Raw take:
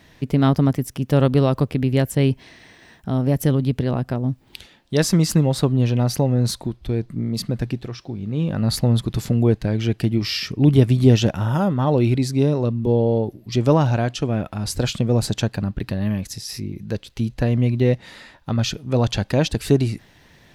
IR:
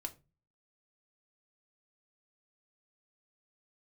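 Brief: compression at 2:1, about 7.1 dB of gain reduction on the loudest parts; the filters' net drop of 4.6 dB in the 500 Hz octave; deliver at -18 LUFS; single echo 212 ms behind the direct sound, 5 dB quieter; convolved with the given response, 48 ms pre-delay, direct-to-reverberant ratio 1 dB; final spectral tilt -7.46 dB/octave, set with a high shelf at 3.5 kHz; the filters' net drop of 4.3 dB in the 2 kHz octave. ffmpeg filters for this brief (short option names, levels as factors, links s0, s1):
-filter_complex "[0:a]equalizer=f=500:t=o:g=-5.5,equalizer=f=2000:t=o:g=-3.5,highshelf=f=3500:g=-6,acompressor=threshold=0.0794:ratio=2,aecho=1:1:212:0.562,asplit=2[s0][s1];[1:a]atrim=start_sample=2205,adelay=48[s2];[s1][s2]afir=irnorm=-1:irlink=0,volume=1.12[s3];[s0][s3]amix=inputs=2:normalize=0,volume=1.68"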